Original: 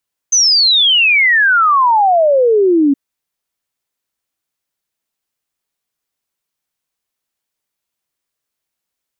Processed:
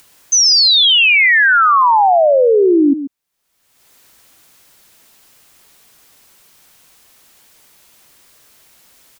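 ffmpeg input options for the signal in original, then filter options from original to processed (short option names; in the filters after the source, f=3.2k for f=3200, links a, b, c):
-f lavfi -i "aevalsrc='0.422*clip(min(t,2.62-t)/0.01,0,1)*sin(2*PI*6300*2.62/log(270/6300)*(exp(log(270/6300)*t/2.62)-1))':d=2.62:s=44100"
-filter_complex "[0:a]acompressor=mode=upward:threshold=-26dB:ratio=2.5,asplit=2[a][b];[b]aecho=0:1:134:0.266[c];[a][c]amix=inputs=2:normalize=0"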